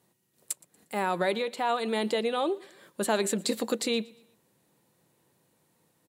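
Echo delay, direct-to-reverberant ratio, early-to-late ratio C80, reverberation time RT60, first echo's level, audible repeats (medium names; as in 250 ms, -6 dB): 118 ms, no reverb, no reverb, no reverb, -24.0 dB, 2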